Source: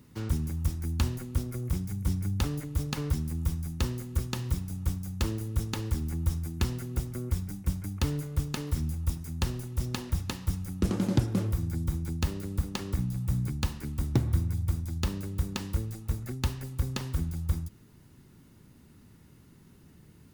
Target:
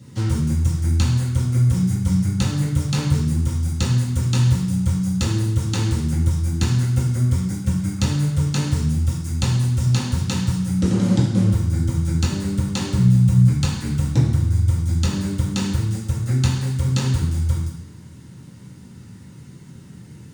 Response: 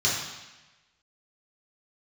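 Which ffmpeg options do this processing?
-filter_complex "[0:a]acompressor=threshold=0.0398:ratio=6[s0];[1:a]atrim=start_sample=2205,asetrate=57330,aresample=44100[s1];[s0][s1]afir=irnorm=-1:irlink=0,volume=1.12"

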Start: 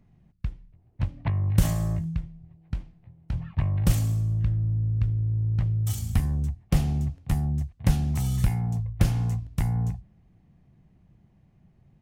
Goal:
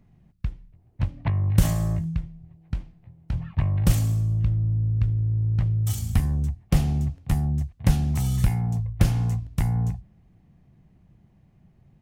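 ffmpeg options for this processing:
-filter_complex "[0:a]asettb=1/sr,asplit=3[s0][s1][s2];[s0]atrim=end=4.264[s3];[s1]atrim=start=4.26:end=5.01,asetpts=PTS-STARTPTS,afade=t=in:d=0.004:c=qsin,afade=t=out:st=0.746:d=0.004:c=qsin,equalizer=f=1700:t=o:w=0.28:g=-7.5[s4];[s2]atrim=start=5.006[s5];[s3][s4]acrossfade=d=0.004:c1=hsin:c2=qsin[s6];[s6][s5]acrossfade=d=0.004:c1=qsin:c2=hsin,volume=1.26"

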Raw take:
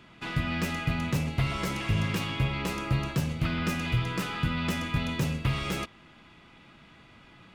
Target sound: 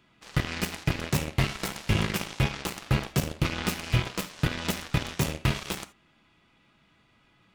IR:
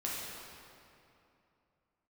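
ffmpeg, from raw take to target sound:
-filter_complex "[0:a]highshelf=f=4700:g=5,aeval=exprs='0.188*(cos(1*acos(clip(val(0)/0.188,-1,1)))-cos(1*PI/2))+0.0335*(cos(7*acos(clip(val(0)/0.188,-1,1)))-cos(7*PI/2))':c=same,asplit=2[s0][s1];[1:a]atrim=start_sample=2205,atrim=end_sample=3969[s2];[s1][s2]afir=irnorm=-1:irlink=0,volume=0.355[s3];[s0][s3]amix=inputs=2:normalize=0"

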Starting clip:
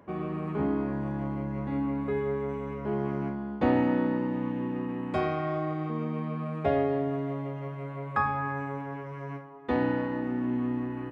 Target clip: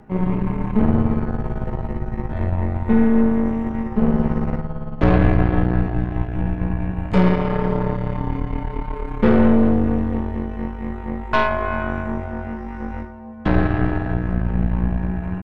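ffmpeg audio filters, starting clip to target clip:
-af "equalizer=f=390:t=o:w=0.2:g=14,atempo=0.72,afreqshift=-190,aeval=exprs='0.335*(cos(1*acos(clip(val(0)/0.335,-1,1)))-cos(1*PI/2))+0.0422*(cos(8*acos(clip(val(0)/0.335,-1,1)))-cos(8*PI/2))':c=same,volume=2.24"

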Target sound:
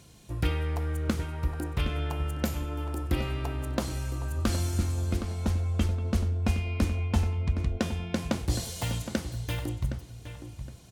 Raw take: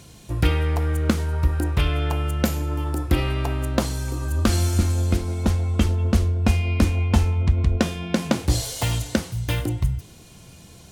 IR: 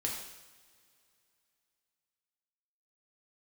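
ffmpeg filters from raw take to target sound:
-filter_complex "[0:a]asplit=2[s0][s1];[s1]adelay=766,lowpass=f=3500:p=1,volume=0.316,asplit=2[s2][s3];[s3]adelay=766,lowpass=f=3500:p=1,volume=0.27,asplit=2[s4][s5];[s5]adelay=766,lowpass=f=3500:p=1,volume=0.27[s6];[s0][s2][s4][s6]amix=inputs=4:normalize=0,volume=0.398"

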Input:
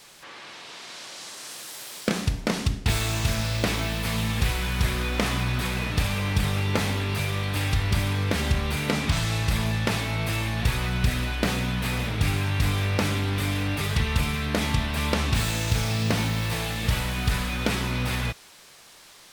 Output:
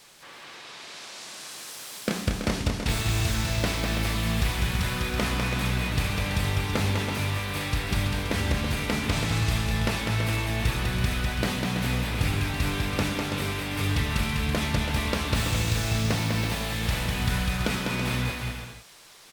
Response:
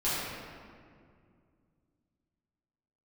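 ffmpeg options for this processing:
-af "aecho=1:1:200|330|414.5|469.4|505.1:0.631|0.398|0.251|0.158|0.1,volume=0.708"

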